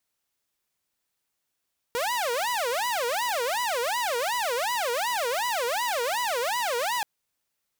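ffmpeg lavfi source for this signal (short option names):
-f lavfi -i "aevalsrc='0.075*(2*mod((729.5*t-261.5/(2*PI*2.7)*sin(2*PI*2.7*t)),1)-1)':d=5.08:s=44100"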